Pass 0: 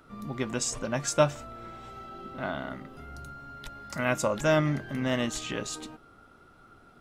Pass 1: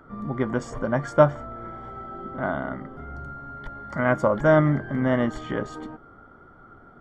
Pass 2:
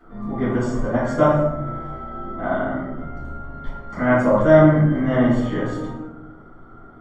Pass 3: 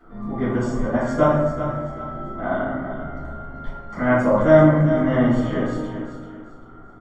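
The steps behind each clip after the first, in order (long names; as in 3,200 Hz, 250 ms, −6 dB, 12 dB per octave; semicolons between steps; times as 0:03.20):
Savitzky-Golay smoothing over 41 samples; level +6.5 dB
convolution reverb RT60 0.85 s, pre-delay 3 ms, DRR −14 dB; level −11 dB
repeating echo 389 ms, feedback 31%, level −10 dB; level −1 dB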